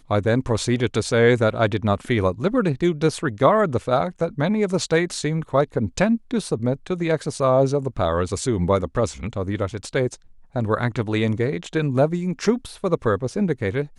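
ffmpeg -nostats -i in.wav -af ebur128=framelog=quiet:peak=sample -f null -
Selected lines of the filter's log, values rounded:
Integrated loudness:
  I:         -22.0 LUFS
  Threshold: -32.0 LUFS
Loudness range:
  LRA:         3.9 LU
  Threshold: -42.1 LUFS
  LRA low:   -24.1 LUFS
  LRA high:  -20.2 LUFS
Sample peak:
  Peak:       -4.2 dBFS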